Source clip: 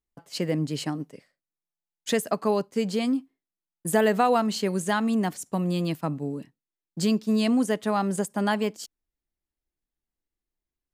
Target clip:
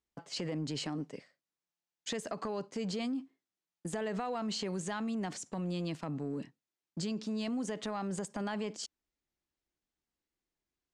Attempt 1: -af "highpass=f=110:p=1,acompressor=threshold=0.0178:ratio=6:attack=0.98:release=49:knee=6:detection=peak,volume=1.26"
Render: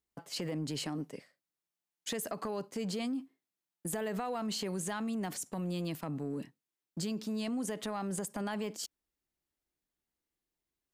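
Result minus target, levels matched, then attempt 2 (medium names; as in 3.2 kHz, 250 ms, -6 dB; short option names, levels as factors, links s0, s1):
8 kHz band +3.0 dB
-af "highpass=f=110:p=1,acompressor=threshold=0.0178:ratio=6:attack=0.98:release=49:knee=6:detection=peak,lowpass=f=7600:w=0.5412,lowpass=f=7600:w=1.3066,volume=1.26"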